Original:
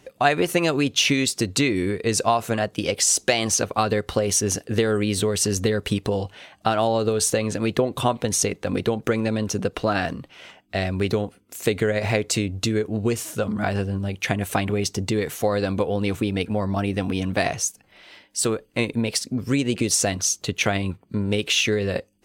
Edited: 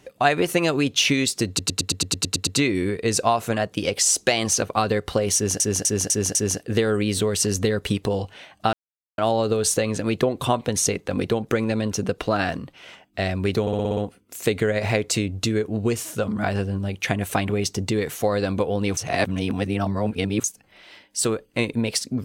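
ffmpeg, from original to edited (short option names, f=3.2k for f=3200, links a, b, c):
-filter_complex "[0:a]asplit=23[a][b][c][d][e][f][g][h][i][j][k][l][m][n][o][p][q][r][s][t][u][v][w];[a]atrim=end=1.592[x];[b]atrim=start=1.478:end=1.592[y];[c]atrim=start=1.478:end=1.592[z];[d]atrim=start=1.478:end=1.592[aa];[e]atrim=start=1.478:end=1.592[ab];[f]atrim=start=1.478:end=1.592[ac];[g]atrim=start=1.478:end=1.592[ad];[h]atrim=start=1.478:end=1.592[ae];[i]atrim=start=1.478:end=1.592[af];[j]atrim=start=1.478:end=4.612[ag];[k]atrim=start=4.358:end=4.612[ah];[l]atrim=start=4.358:end=4.612[ai];[m]atrim=start=4.358:end=4.612[aj];[n]atrim=start=4.358:end=6.74,asetpts=PTS-STARTPTS,afade=t=out:st=2.378:d=0.004:c=hsin,apad=pad_dur=0.45[ak];[o]atrim=start=6.74:end=11.232,asetpts=PTS-STARTPTS,afade=t=in:d=0.004:c=hsin[al];[p]atrim=start=11.168:end=11.232[am];[q]atrim=start=11.168:end=11.232[an];[r]atrim=start=11.168:end=11.232[ao];[s]atrim=start=11.168:end=11.232[ap];[t]atrim=start=11.168:end=11.232[aq];[u]atrim=start=11.168:end=16.172[ar];[v]atrim=start=16.168:end=17.642,asetpts=PTS-STARTPTS,areverse[as];[w]atrim=start=17.638[at];[x][y]acrossfade=d=0.004:c1=hsin:c2=hsin[au];[au][z]acrossfade=d=0.004:c1=hsin:c2=hsin[av];[av][aa]acrossfade=d=0.004:c1=hsin:c2=hsin[aw];[aw][ab]acrossfade=d=0.004:c1=hsin:c2=hsin[ax];[ax][ac]acrossfade=d=0.004:c1=hsin:c2=hsin[ay];[ay][ad]acrossfade=d=0.004:c1=hsin:c2=hsin[az];[az][ae]acrossfade=d=0.004:c1=hsin:c2=hsin[ba];[ba][af]acrossfade=d=0.004:c1=hsin:c2=hsin[bb];[bb][ag]acrossfade=d=0.004:c1=hsin:c2=hsin[bc];[bc][ah]acrossfade=d=0.004:c1=hsin:c2=hsin[bd];[bd][ai]acrossfade=d=0.004:c1=hsin:c2=hsin[be];[be][aj]acrossfade=d=0.004:c1=hsin:c2=hsin[bf];[ak][al]concat=n=2:v=0:a=1[bg];[bf][bg]acrossfade=d=0.004:c1=hsin:c2=hsin[bh];[bh][am]acrossfade=d=0.004:c1=hsin:c2=hsin[bi];[bi][an]acrossfade=d=0.004:c1=hsin:c2=hsin[bj];[bj][ao]acrossfade=d=0.004:c1=hsin:c2=hsin[bk];[bk][ap]acrossfade=d=0.004:c1=hsin:c2=hsin[bl];[bl][aq]acrossfade=d=0.004:c1=hsin:c2=hsin[bm];[bm][ar]acrossfade=d=0.004:c1=hsin:c2=hsin[bn];[bn][as]acrossfade=d=0.004:c1=hsin:c2=hsin[bo];[bo][at]acrossfade=d=0.004:c1=hsin:c2=hsin"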